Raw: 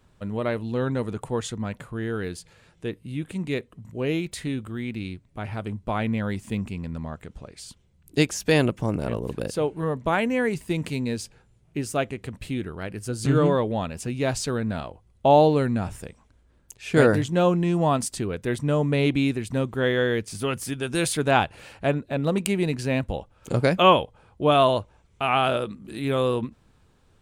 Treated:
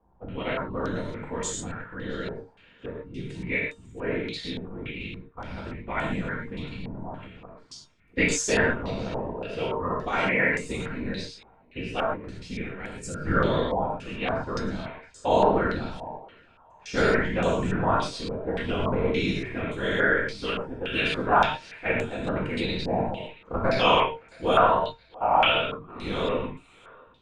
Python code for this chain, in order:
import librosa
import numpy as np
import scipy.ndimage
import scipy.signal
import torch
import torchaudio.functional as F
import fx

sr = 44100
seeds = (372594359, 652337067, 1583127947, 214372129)

y = fx.whisperise(x, sr, seeds[0])
y = fx.comb_fb(y, sr, f0_hz=460.0, decay_s=0.22, harmonics='all', damping=0.0, mix_pct=70)
y = fx.dynamic_eq(y, sr, hz=1900.0, q=0.73, threshold_db=-44.0, ratio=4.0, max_db=4)
y = fx.echo_thinned(y, sr, ms=671, feedback_pct=32, hz=1200.0, wet_db=-19)
y = fx.rev_gated(y, sr, seeds[1], gate_ms=150, shape='flat', drr_db=-2.0)
y = fx.filter_held_lowpass(y, sr, hz=3.5, low_hz=830.0, high_hz=7500.0)